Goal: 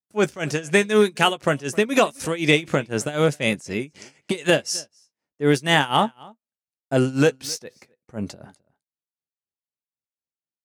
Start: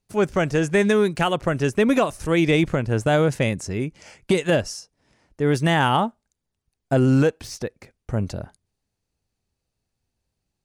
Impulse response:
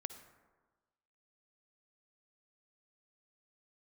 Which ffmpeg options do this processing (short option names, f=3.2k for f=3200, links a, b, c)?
-filter_complex "[0:a]highpass=160,agate=range=-23dB:threshold=-51dB:ratio=16:detection=peak,tremolo=f=4:d=0.89,asplit=2[a][b];[b]adelay=14,volume=-12dB[c];[a][c]amix=inputs=2:normalize=0,asplit=2[d][e];[e]adelay=262.4,volume=-24dB,highshelf=f=4k:g=-5.9[f];[d][f]amix=inputs=2:normalize=0,adynamicequalizer=threshold=0.00891:dfrequency=2000:dqfactor=0.7:tfrequency=2000:tqfactor=0.7:attack=5:release=100:ratio=0.375:range=3.5:mode=boostabove:tftype=highshelf,volume=2.5dB"